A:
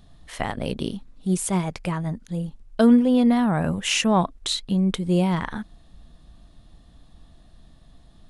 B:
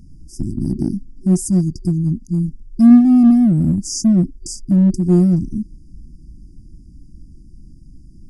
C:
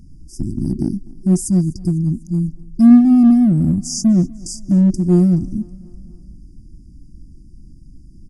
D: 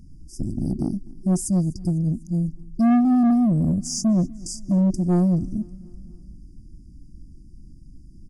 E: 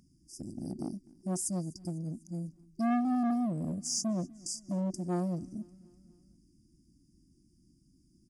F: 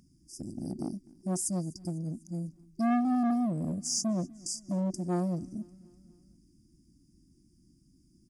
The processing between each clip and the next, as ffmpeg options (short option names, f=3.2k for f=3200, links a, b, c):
-filter_complex "[0:a]afftfilt=real='re*(1-between(b*sr/4096,370,4700))':imag='im*(1-between(b*sr/4096,370,4700))':win_size=4096:overlap=0.75,highshelf=f=5.1k:g=-10,asplit=2[a][b];[b]asoftclip=type=hard:threshold=-22.5dB,volume=-6dB[c];[a][c]amix=inputs=2:normalize=0,volume=6.5dB"
-af "aecho=1:1:249|498|747|996:0.0631|0.0372|0.022|0.013"
-af "asoftclip=type=tanh:threshold=-10.5dB,volume=-3.5dB"
-af "highpass=f=550:p=1,volume=-4.5dB"
-af "bandreject=f=2.9k:w=24,volume=2dB"